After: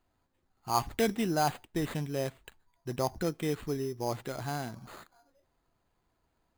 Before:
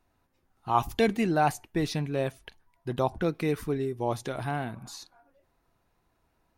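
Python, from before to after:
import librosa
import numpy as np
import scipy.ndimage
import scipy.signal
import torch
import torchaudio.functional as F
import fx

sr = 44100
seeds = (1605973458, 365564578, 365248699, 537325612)

y = fx.high_shelf(x, sr, hz=8900.0, db=-4.5)
y = fx.sample_hold(y, sr, seeds[0], rate_hz=5600.0, jitter_pct=0)
y = y * librosa.db_to_amplitude(-4.0)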